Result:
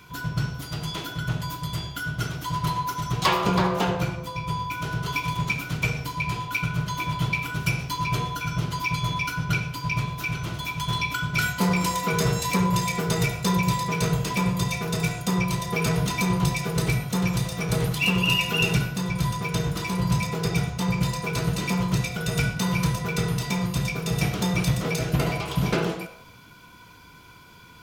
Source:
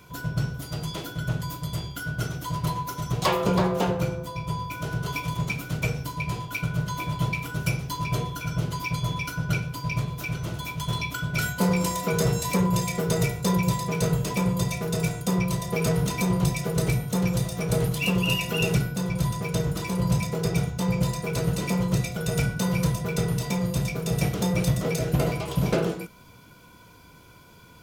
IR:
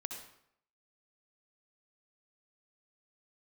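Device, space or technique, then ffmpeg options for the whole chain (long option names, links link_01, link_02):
filtered reverb send: -filter_complex "[0:a]asplit=2[link_01][link_02];[link_02]highpass=frequency=550:width=0.5412,highpass=frequency=550:width=1.3066,lowpass=6000[link_03];[1:a]atrim=start_sample=2205[link_04];[link_03][link_04]afir=irnorm=-1:irlink=0,volume=-0.5dB[link_05];[link_01][link_05]amix=inputs=2:normalize=0"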